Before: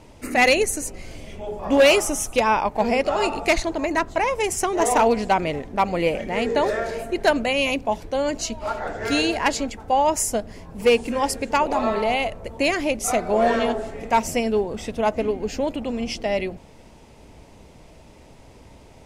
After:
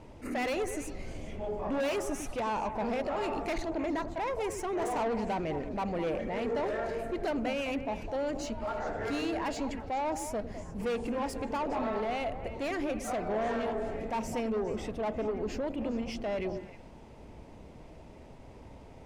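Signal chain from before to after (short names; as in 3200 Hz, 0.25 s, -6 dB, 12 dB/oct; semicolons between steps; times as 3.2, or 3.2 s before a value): soft clip -22 dBFS, distortion -8 dB; limiter -25.5 dBFS, peak gain reduction 3.5 dB; high shelf 3000 Hz -11 dB; delay with a stepping band-pass 0.103 s, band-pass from 290 Hz, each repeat 1.4 oct, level -5.5 dB; attack slew limiter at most 240 dB/s; gain -2.5 dB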